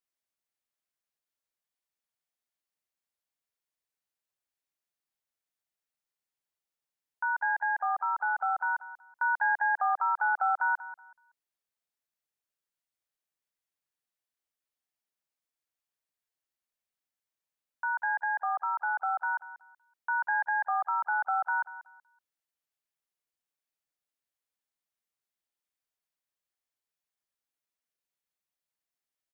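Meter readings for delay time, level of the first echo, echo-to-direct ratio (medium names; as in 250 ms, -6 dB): 188 ms, -15.0 dB, -14.5 dB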